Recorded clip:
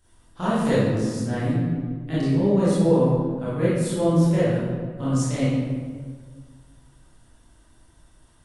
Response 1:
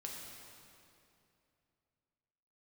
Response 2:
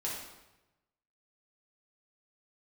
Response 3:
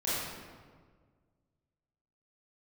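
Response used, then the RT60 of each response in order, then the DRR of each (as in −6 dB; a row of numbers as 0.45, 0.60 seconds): 3; 2.7, 1.0, 1.6 seconds; −2.0, −5.5, −11.0 decibels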